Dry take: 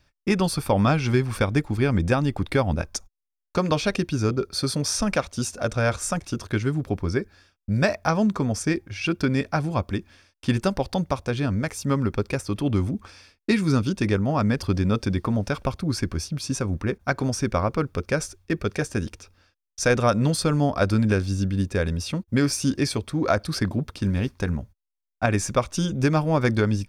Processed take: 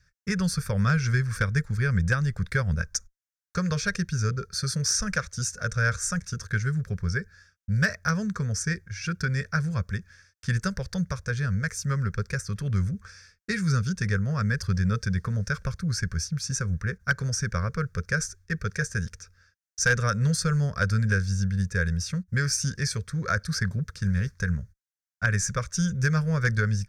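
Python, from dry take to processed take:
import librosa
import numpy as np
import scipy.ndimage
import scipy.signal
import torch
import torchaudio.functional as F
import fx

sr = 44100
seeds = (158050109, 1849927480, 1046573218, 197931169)

y = fx.curve_eq(x, sr, hz=(180.0, 300.0, 460.0, 790.0, 1600.0, 2900.0, 6100.0, 10000.0), db=(0, -26, -6, -23, 6, -14, 4, -5))
y = fx.clip_asym(y, sr, top_db=-16.5, bottom_db=-12.0)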